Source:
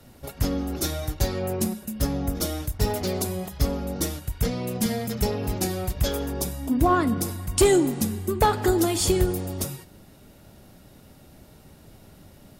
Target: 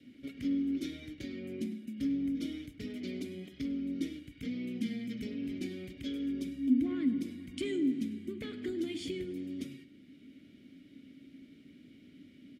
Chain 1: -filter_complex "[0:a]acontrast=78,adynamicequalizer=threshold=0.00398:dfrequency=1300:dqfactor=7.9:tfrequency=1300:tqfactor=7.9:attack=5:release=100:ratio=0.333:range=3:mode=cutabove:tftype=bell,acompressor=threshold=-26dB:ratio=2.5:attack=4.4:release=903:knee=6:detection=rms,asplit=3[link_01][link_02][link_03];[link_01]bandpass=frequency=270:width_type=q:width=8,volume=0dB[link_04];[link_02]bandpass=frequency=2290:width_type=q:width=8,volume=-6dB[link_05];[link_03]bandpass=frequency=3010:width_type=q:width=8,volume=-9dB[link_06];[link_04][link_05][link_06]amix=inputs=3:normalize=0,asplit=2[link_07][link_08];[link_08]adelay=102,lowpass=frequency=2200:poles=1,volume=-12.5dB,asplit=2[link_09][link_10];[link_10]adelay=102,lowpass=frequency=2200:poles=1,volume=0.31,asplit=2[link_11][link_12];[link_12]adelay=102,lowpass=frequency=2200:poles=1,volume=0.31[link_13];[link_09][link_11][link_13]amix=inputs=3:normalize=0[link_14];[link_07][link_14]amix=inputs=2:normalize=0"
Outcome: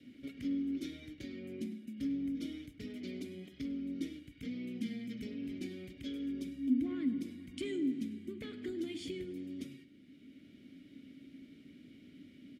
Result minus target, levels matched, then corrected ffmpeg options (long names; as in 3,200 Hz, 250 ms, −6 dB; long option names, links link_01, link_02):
downward compressor: peak gain reduction +3.5 dB
-filter_complex "[0:a]acontrast=78,adynamicequalizer=threshold=0.00398:dfrequency=1300:dqfactor=7.9:tfrequency=1300:tqfactor=7.9:attack=5:release=100:ratio=0.333:range=3:mode=cutabove:tftype=bell,acompressor=threshold=-20dB:ratio=2.5:attack=4.4:release=903:knee=6:detection=rms,asplit=3[link_01][link_02][link_03];[link_01]bandpass=frequency=270:width_type=q:width=8,volume=0dB[link_04];[link_02]bandpass=frequency=2290:width_type=q:width=8,volume=-6dB[link_05];[link_03]bandpass=frequency=3010:width_type=q:width=8,volume=-9dB[link_06];[link_04][link_05][link_06]amix=inputs=3:normalize=0,asplit=2[link_07][link_08];[link_08]adelay=102,lowpass=frequency=2200:poles=1,volume=-12.5dB,asplit=2[link_09][link_10];[link_10]adelay=102,lowpass=frequency=2200:poles=1,volume=0.31,asplit=2[link_11][link_12];[link_12]adelay=102,lowpass=frequency=2200:poles=1,volume=0.31[link_13];[link_09][link_11][link_13]amix=inputs=3:normalize=0[link_14];[link_07][link_14]amix=inputs=2:normalize=0"